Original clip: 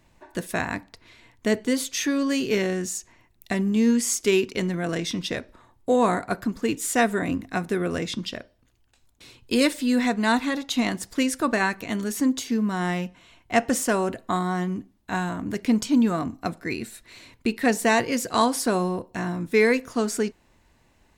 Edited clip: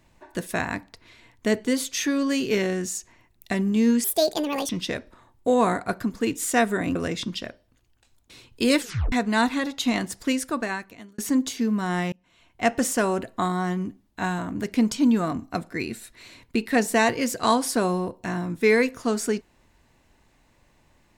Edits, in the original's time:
0:04.04–0:05.11: play speed 164%
0:07.37–0:07.86: remove
0:09.70: tape stop 0.33 s
0:11.12–0:12.09: fade out
0:13.03–0:13.82: fade in equal-power

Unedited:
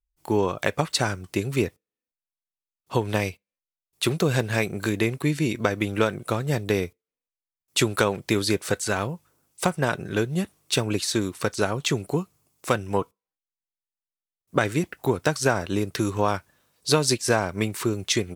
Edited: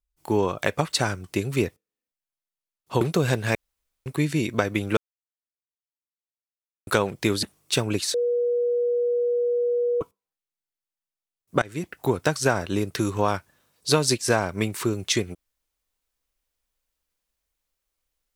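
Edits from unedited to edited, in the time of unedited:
0:03.01–0:04.07: remove
0:04.61–0:05.12: fill with room tone
0:06.03–0:07.93: silence
0:08.49–0:10.43: remove
0:11.14–0:13.01: beep over 482 Hz −20 dBFS
0:14.62–0:15.00: fade in, from −23.5 dB

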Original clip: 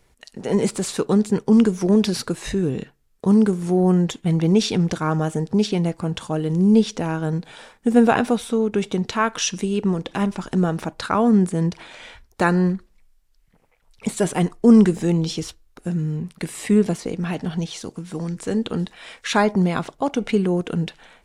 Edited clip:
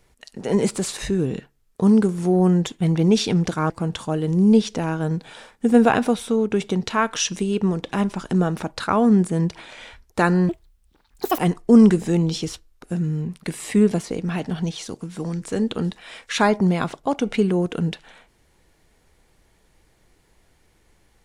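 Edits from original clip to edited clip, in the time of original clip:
0:00.98–0:02.42: remove
0:05.14–0:05.92: remove
0:12.71–0:14.34: play speed 181%

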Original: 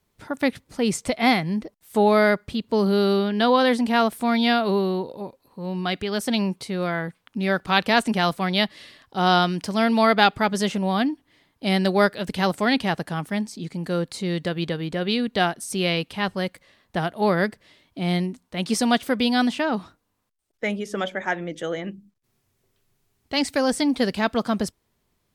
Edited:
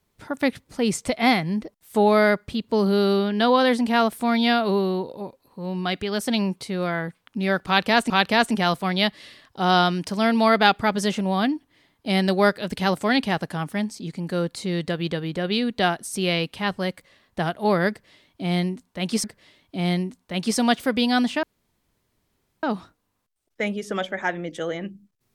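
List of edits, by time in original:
0:07.67–0:08.10: repeat, 2 plays
0:17.47–0:18.81: repeat, 2 plays
0:19.66: splice in room tone 1.20 s

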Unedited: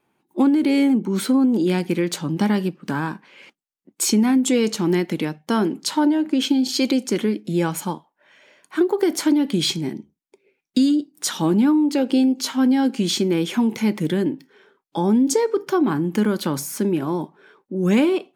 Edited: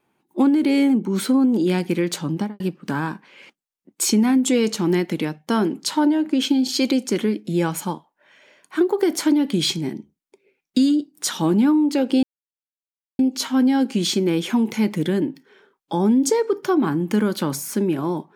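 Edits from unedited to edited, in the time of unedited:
0:02.30–0:02.60: fade out and dull
0:12.23: splice in silence 0.96 s

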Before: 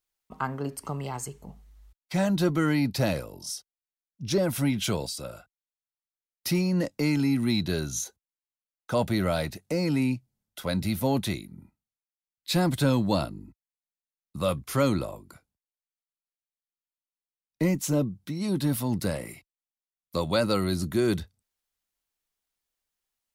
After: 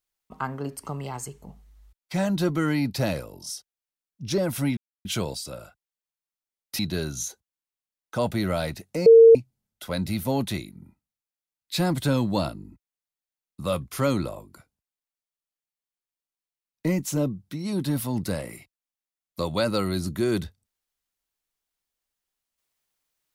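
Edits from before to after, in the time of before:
0:04.77: splice in silence 0.28 s
0:06.51–0:07.55: remove
0:09.82–0:10.11: beep over 456 Hz −7.5 dBFS

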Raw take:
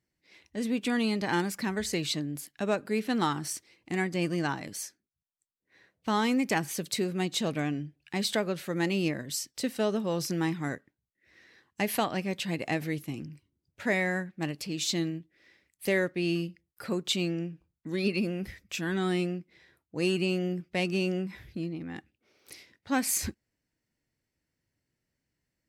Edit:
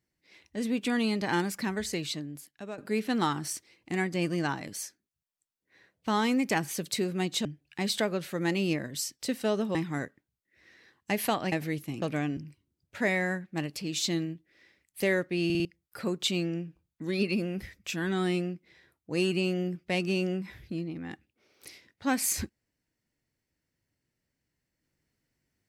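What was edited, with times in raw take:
0:01.63–0:02.78: fade out, to −13.5 dB
0:07.45–0:07.80: move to 0:13.22
0:10.10–0:10.45: remove
0:12.22–0:12.72: remove
0:16.30: stutter in place 0.05 s, 4 plays

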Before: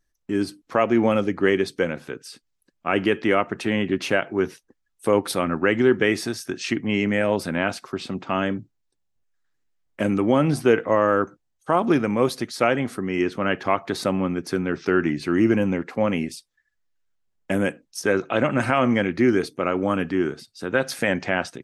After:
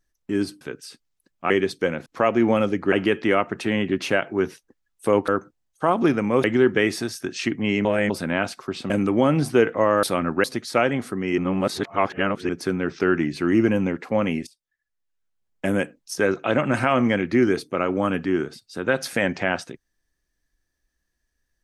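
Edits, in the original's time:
0:00.61–0:01.47: swap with 0:02.03–0:02.92
0:05.28–0:05.69: swap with 0:11.14–0:12.30
0:07.10–0:07.35: reverse
0:08.15–0:10.01: remove
0:13.24–0:14.35: reverse
0:16.33–0:17.58: fade in, from −18.5 dB

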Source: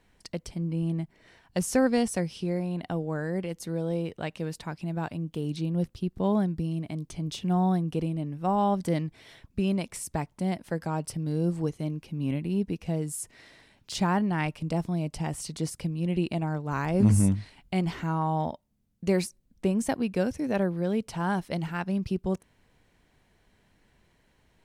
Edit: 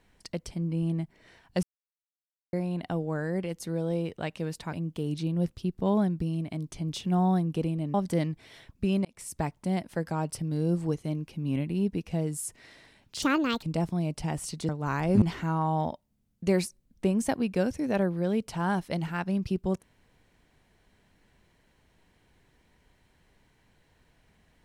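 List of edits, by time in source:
0:01.63–0:02.53: silence
0:04.73–0:05.11: remove
0:08.32–0:08.69: remove
0:09.80–0:10.13: fade in
0:13.97–0:14.59: play speed 152%
0:15.65–0:16.54: remove
0:17.07–0:17.82: remove

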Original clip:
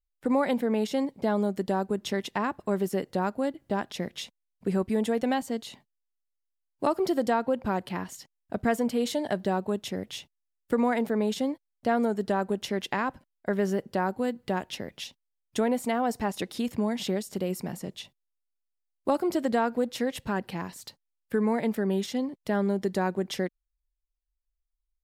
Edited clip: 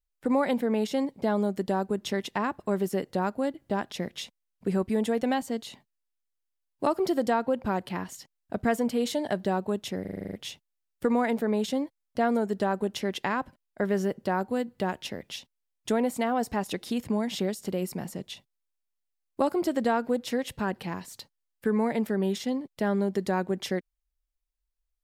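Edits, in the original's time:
0:10.01: stutter 0.04 s, 9 plays

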